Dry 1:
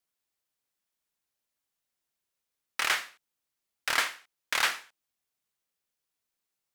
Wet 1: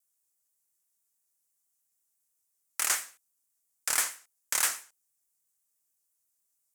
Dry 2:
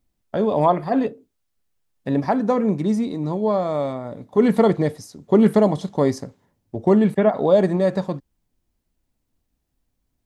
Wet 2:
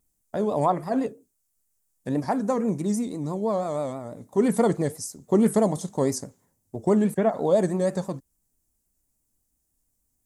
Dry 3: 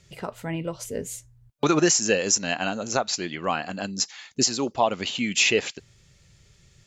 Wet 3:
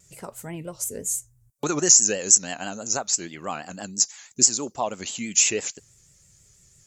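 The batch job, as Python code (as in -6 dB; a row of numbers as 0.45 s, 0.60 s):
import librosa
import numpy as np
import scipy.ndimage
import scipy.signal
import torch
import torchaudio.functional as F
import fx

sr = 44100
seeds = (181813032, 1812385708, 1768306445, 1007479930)

y = fx.high_shelf_res(x, sr, hz=5400.0, db=13.5, q=1.5)
y = fx.vibrato(y, sr, rate_hz=6.1, depth_cents=87.0)
y = F.gain(torch.from_numpy(y), -5.0).numpy()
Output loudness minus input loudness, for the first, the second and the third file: 0.0 LU, -5.0 LU, +3.0 LU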